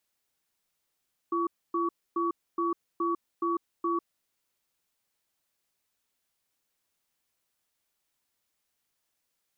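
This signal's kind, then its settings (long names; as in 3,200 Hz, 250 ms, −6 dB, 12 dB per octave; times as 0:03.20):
tone pair in a cadence 340 Hz, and 1,130 Hz, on 0.15 s, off 0.27 s, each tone −28 dBFS 2.94 s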